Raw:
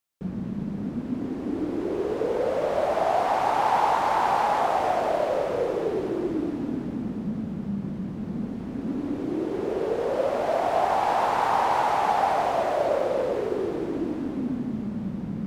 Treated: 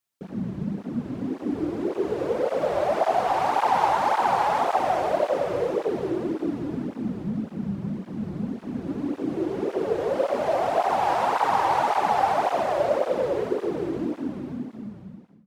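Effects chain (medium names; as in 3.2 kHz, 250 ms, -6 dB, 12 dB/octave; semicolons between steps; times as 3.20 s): fade out at the end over 1.44 s; cancelling through-zero flanger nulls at 1.8 Hz, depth 4.8 ms; trim +3.5 dB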